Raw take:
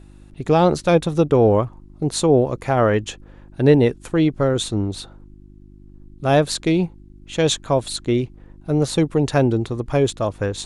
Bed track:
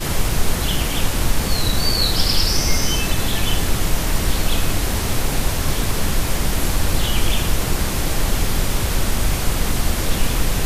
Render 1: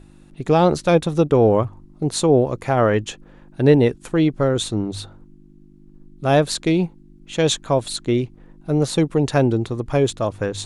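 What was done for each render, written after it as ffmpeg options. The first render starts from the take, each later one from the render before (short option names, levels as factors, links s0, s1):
-af "bandreject=f=50:t=h:w=4,bandreject=f=100:t=h:w=4"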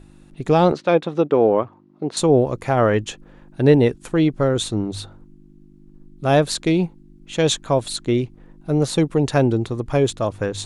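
-filter_complex "[0:a]asettb=1/sr,asplit=3[s0][s1][s2];[s0]atrim=end=0.724[s3];[s1]atrim=start=0.72:end=2.17,asetpts=PTS-STARTPTS,afade=t=in:d=0.004:c=qsin,afade=t=out:st=1.446:d=0.004:c=qsin,highpass=240,lowpass=3300[s4];[s2]atrim=start=2.166[s5];[s3][s4]acrossfade=d=0.004:c1=hsin:c2=qsin[s6];[s6][s5]acrossfade=d=0.004:c1=qsin:c2=hsin"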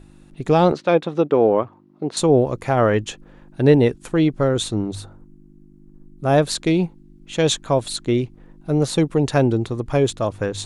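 -filter_complex "[0:a]asettb=1/sr,asplit=3[s0][s1][s2];[s0]atrim=end=4.954[s3];[s1]atrim=start=4.95:end=6.38,asetpts=PTS-STARTPTS,afade=t=in:d=0.004:c=qsin,afade=t=out:st=1.426:d=0.004:c=qsin,equalizer=f=3500:w=1:g=-8[s4];[s2]atrim=start=6.376[s5];[s3][s4]acrossfade=d=0.004:c1=hsin:c2=qsin[s6];[s6][s5]acrossfade=d=0.004:c1=qsin:c2=hsin"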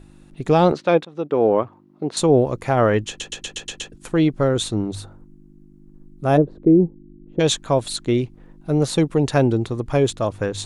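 -filter_complex "[0:a]asplit=3[s0][s1][s2];[s0]afade=t=out:st=6.36:d=0.02[s3];[s1]lowpass=f=380:t=q:w=2,afade=t=in:st=6.36:d=0.02,afade=t=out:st=7.39:d=0.02[s4];[s2]afade=t=in:st=7.39:d=0.02[s5];[s3][s4][s5]amix=inputs=3:normalize=0,asplit=9[s6][s7][s8][s9][s10][s11][s12][s13][s14];[s6]atrim=end=1.05,asetpts=PTS-STARTPTS,afade=t=out:st=1.046:d=0.004:c=hsin:silence=0.0944061[s15];[s7]atrim=start=1.05:end=3.202,asetpts=PTS-STARTPTS,afade=t=in:d=0.46:silence=0.0944061[s16];[s8]atrim=start=3.078:end=3.202[s17];[s9]atrim=start=3.078:end=3.202[s18];[s10]atrim=start=3.078:end=3.202[s19];[s11]atrim=start=3.078:end=3.202[s20];[s12]atrim=start=3.078:end=3.202[s21];[s13]atrim=start=3.078:end=3.202[s22];[s14]atrim=start=3.918[s23];[s15][s16]concat=n=2:v=0:a=1[s24];[s24][s17]acrossfade=d=0.004:c1=hsin:c2=hsin[s25];[s25][s18]acrossfade=d=0.004:c1=hsin:c2=hsin[s26];[s26][s19]acrossfade=d=0.004:c1=hsin:c2=hsin[s27];[s27][s20]acrossfade=d=0.004:c1=hsin:c2=hsin[s28];[s28][s21]acrossfade=d=0.004:c1=hsin:c2=hsin[s29];[s29][s22]acrossfade=d=0.004:c1=hsin:c2=hsin[s30];[s30][s23]acrossfade=d=0.004:c1=hsin:c2=hsin"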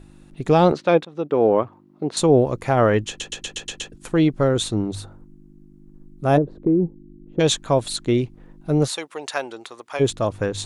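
-filter_complex "[0:a]asettb=1/sr,asplit=3[s0][s1][s2];[s0]atrim=end=6.384[s3];[s1]atrim=start=6.38:end=7.39,asetpts=PTS-STARTPTS,afade=t=in:d=0.004:c=qsin,afade=t=out:st=1.006:d=0.004:c=qsin,acompressor=threshold=0.158:ratio=2.5:attack=3.2:release=140:knee=1:detection=peak[s4];[s2]atrim=start=7.386[s5];[s3][s4]acrossfade=d=0.004:c1=hsin:c2=qsin[s6];[s6][s5]acrossfade=d=0.004:c1=qsin:c2=hsin,asplit=3[s7][s8][s9];[s7]afade=t=out:st=8.87:d=0.02[s10];[s8]highpass=900,afade=t=in:st=8.87:d=0.02,afade=t=out:st=9.99:d=0.02[s11];[s9]afade=t=in:st=9.99:d=0.02[s12];[s10][s11][s12]amix=inputs=3:normalize=0"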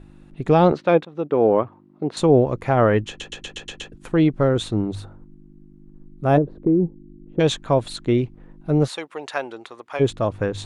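-af "bass=f=250:g=1,treble=f=4000:g=-10"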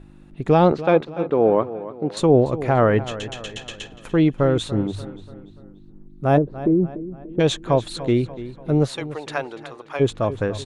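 -filter_complex "[0:a]asplit=2[s0][s1];[s1]adelay=291,lowpass=f=4800:p=1,volume=0.188,asplit=2[s2][s3];[s3]adelay=291,lowpass=f=4800:p=1,volume=0.48,asplit=2[s4][s5];[s5]adelay=291,lowpass=f=4800:p=1,volume=0.48,asplit=2[s6][s7];[s7]adelay=291,lowpass=f=4800:p=1,volume=0.48[s8];[s0][s2][s4][s6][s8]amix=inputs=5:normalize=0"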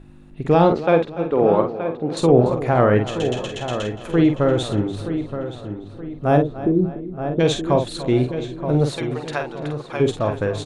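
-filter_complex "[0:a]asplit=2[s0][s1];[s1]adelay=48,volume=0.473[s2];[s0][s2]amix=inputs=2:normalize=0,asplit=2[s3][s4];[s4]adelay=924,lowpass=f=2400:p=1,volume=0.335,asplit=2[s5][s6];[s6]adelay=924,lowpass=f=2400:p=1,volume=0.41,asplit=2[s7][s8];[s8]adelay=924,lowpass=f=2400:p=1,volume=0.41,asplit=2[s9][s10];[s10]adelay=924,lowpass=f=2400:p=1,volume=0.41[s11];[s3][s5][s7][s9][s11]amix=inputs=5:normalize=0"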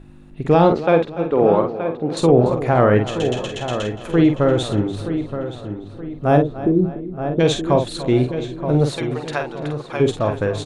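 -af "volume=1.19,alimiter=limit=0.708:level=0:latency=1"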